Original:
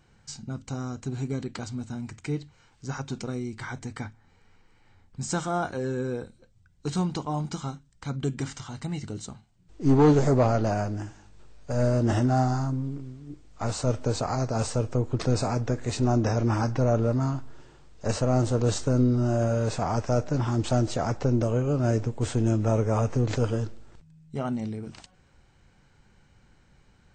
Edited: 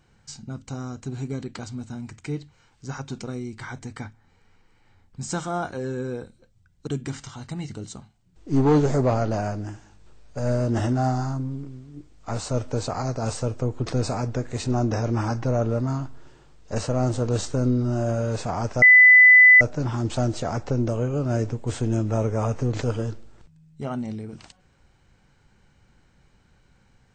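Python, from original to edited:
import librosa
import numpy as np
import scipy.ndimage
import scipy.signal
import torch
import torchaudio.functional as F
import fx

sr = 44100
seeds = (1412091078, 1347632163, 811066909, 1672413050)

y = fx.edit(x, sr, fx.cut(start_s=6.87, length_s=1.33),
    fx.insert_tone(at_s=20.15, length_s=0.79, hz=2000.0, db=-8.0), tone=tone)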